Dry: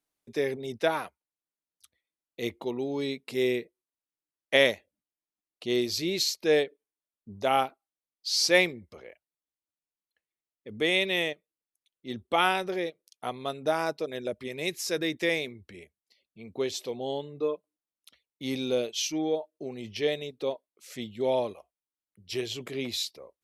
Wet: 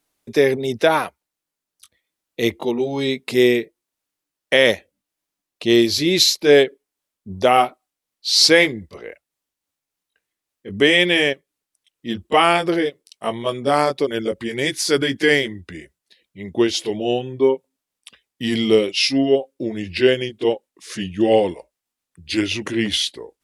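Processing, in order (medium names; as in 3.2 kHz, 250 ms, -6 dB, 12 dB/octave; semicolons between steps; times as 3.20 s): pitch bend over the whole clip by -3 st starting unshifted; loudness maximiser +14 dB; trim -1 dB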